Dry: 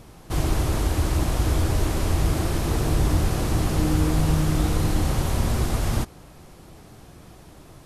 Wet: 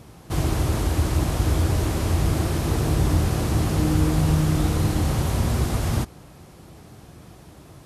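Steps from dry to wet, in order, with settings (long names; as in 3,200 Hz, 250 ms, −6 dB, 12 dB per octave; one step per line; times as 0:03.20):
high-pass filter 69 Hz
low-shelf EQ 160 Hz +5 dB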